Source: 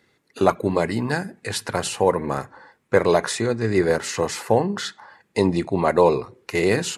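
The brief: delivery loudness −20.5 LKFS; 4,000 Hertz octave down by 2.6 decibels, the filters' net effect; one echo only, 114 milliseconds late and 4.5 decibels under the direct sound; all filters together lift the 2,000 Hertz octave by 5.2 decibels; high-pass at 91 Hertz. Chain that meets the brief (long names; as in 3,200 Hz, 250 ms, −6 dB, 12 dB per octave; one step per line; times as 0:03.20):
high-pass filter 91 Hz
parametric band 2,000 Hz +7.5 dB
parametric band 4,000 Hz −5.5 dB
single-tap delay 114 ms −4.5 dB
level −0.5 dB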